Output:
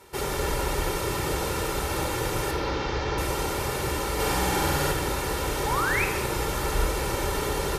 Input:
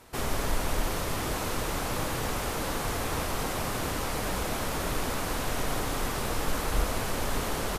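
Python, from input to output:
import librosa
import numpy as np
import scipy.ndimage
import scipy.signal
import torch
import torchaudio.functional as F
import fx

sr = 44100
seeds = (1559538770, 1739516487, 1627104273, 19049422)

y = fx.delta_mod(x, sr, bps=32000, step_db=-38.5, at=(2.51, 3.18))
y = scipy.signal.sosfilt(scipy.signal.butter(2, 48.0, 'highpass', fs=sr, output='sos'), y)
y = fx.peak_eq(y, sr, hz=310.0, db=3.0, octaves=0.77)
y = y + 0.61 * np.pad(y, (int(2.2 * sr / 1000.0), 0))[:len(y)]
y = fx.room_flutter(y, sr, wall_m=8.3, rt60_s=1.3, at=(4.18, 4.91), fade=0.02)
y = fx.spec_paint(y, sr, seeds[0], shape='rise', start_s=5.66, length_s=0.39, low_hz=800.0, high_hz=2700.0, level_db=-28.0)
y = fx.room_shoebox(y, sr, seeds[1], volume_m3=1300.0, walls='mixed', distance_m=1.2)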